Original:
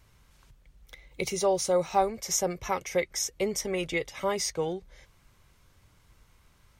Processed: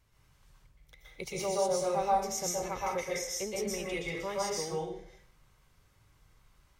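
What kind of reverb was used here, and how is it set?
plate-style reverb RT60 0.61 s, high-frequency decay 0.8×, pre-delay 110 ms, DRR -4.5 dB; trim -9.5 dB

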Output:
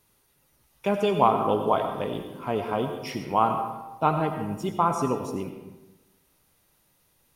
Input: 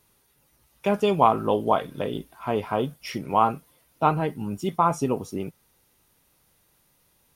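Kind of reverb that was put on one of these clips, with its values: algorithmic reverb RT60 1.1 s, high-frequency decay 0.6×, pre-delay 50 ms, DRR 6 dB; trim -2 dB

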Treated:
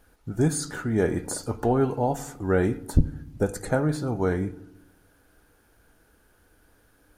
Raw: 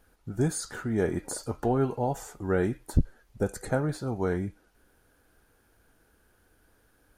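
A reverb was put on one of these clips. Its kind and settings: FDN reverb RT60 0.8 s, low-frequency decay 1.5×, high-frequency decay 0.3×, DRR 14.5 dB; trim +3.5 dB

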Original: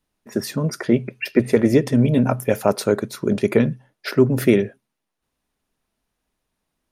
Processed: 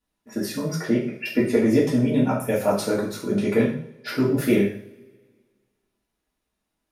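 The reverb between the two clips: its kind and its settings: two-slope reverb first 0.5 s, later 1.8 s, from -24 dB, DRR -6.5 dB; trim -9.5 dB

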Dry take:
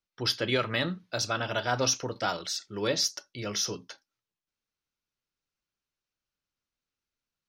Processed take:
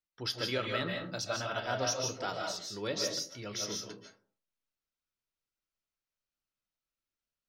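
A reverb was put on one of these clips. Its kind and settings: algorithmic reverb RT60 0.47 s, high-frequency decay 0.4×, pre-delay 110 ms, DRR 1 dB; trim -7.5 dB

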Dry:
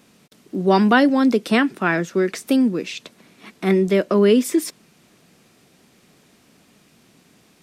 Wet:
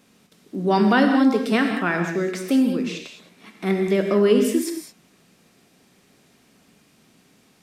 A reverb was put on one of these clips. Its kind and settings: gated-style reverb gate 240 ms flat, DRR 3 dB; trim -4 dB

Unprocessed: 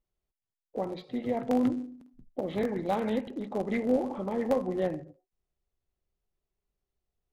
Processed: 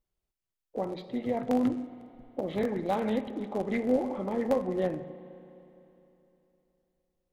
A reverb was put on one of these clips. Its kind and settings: spring tank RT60 3.2 s, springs 33/51 ms, chirp 35 ms, DRR 13.5 dB

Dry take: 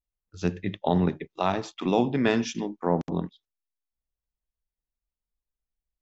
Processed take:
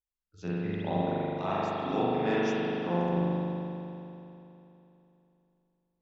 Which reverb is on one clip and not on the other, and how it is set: spring tank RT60 3.1 s, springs 40 ms, chirp 55 ms, DRR -9.5 dB; trim -12.5 dB

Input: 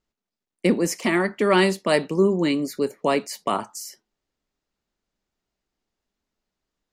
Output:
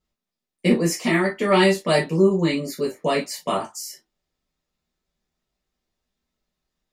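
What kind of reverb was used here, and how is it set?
gated-style reverb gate 80 ms falling, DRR -5 dB; trim -5 dB

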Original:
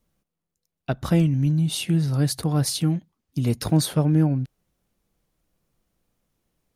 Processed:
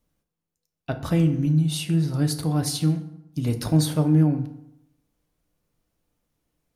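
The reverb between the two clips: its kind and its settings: FDN reverb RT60 0.83 s, low-frequency decay 1.05×, high-frequency decay 0.6×, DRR 6.5 dB; trim -2.5 dB

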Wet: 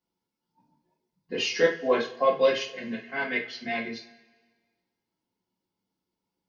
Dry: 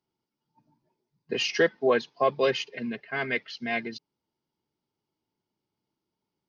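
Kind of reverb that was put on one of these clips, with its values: two-slope reverb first 0.32 s, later 1.5 s, from -21 dB, DRR -5 dB; trim -6 dB

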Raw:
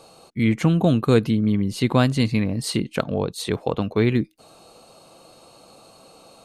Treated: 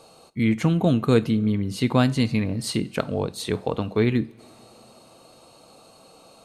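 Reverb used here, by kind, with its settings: two-slope reverb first 0.36 s, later 3.6 s, from -21 dB, DRR 13.5 dB; trim -2 dB

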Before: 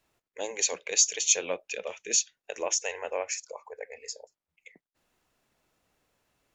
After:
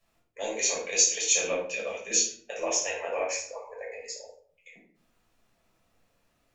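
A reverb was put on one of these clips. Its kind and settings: simulated room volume 590 m³, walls furnished, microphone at 6 m; trim -6 dB

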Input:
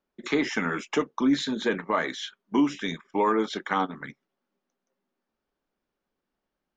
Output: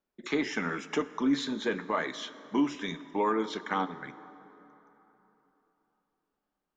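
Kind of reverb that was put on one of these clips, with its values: plate-style reverb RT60 3.6 s, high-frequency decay 0.55×, DRR 14 dB; trim -4.5 dB

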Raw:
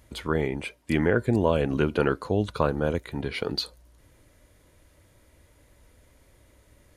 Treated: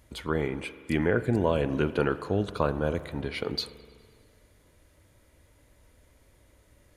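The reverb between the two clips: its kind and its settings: spring tank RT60 2 s, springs 41 ms, chirp 70 ms, DRR 13 dB; trim -2.5 dB

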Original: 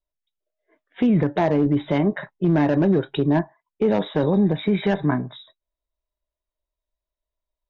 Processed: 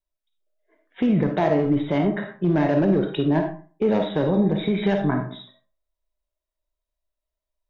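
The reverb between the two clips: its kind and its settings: algorithmic reverb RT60 0.41 s, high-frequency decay 0.6×, pre-delay 10 ms, DRR 3.5 dB; trim -2 dB

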